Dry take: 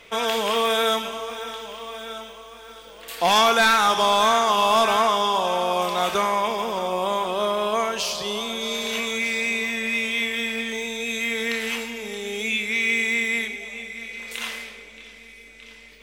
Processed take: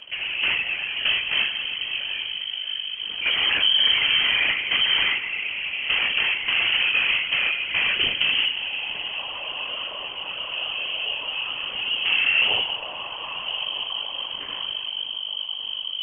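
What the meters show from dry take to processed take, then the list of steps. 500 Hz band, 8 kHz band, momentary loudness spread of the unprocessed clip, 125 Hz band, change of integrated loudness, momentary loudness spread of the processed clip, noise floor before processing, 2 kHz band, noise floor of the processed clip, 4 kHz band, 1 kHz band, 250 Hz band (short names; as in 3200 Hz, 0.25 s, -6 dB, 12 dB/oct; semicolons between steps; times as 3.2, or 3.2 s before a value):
-18.0 dB, under -40 dB, 16 LU, n/a, 0.0 dB, 11 LU, -46 dBFS, +2.0 dB, -34 dBFS, +6.5 dB, -15.0 dB, -16.0 dB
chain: limiter -22.5 dBFS, peak gain reduction 10.5 dB; tilt -4 dB/oct; on a send: flutter echo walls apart 7.2 m, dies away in 0.43 s; on the sum: upward compressor, threshold -42 dBFS; low shelf 330 Hz +9 dB; gate with hold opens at -14 dBFS; compressor, threshold -29 dBFS, peak gain reduction 14.5 dB; sample leveller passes 5; inverted band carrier 3100 Hz; non-linear reverb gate 0.28 s flat, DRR 10.5 dB; whisperiser; gain -1.5 dB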